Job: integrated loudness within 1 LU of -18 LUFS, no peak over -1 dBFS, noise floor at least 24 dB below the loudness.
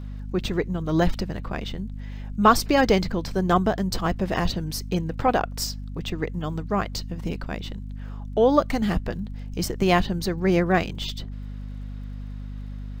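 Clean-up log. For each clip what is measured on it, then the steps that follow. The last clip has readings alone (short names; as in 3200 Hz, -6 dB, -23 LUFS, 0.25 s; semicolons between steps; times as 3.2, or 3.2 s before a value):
ticks 35/s; hum 50 Hz; harmonics up to 250 Hz; hum level -31 dBFS; loudness -24.5 LUFS; peak -5.0 dBFS; loudness target -18.0 LUFS
-> de-click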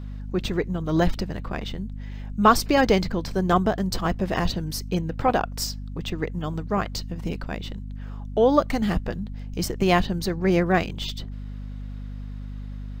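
ticks 0.38/s; hum 50 Hz; harmonics up to 250 Hz; hum level -31 dBFS
-> de-hum 50 Hz, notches 5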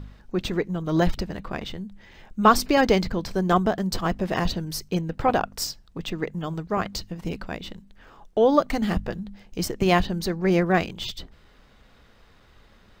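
hum none; loudness -25.0 LUFS; peak -4.5 dBFS; loudness target -18.0 LUFS
-> gain +7 dB; limiter -1 dBFS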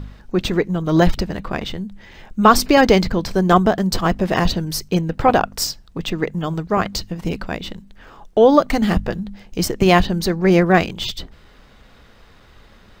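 loudness -18.0 LUFS; peak -1.0 dBFS; noise floor -48 dBFS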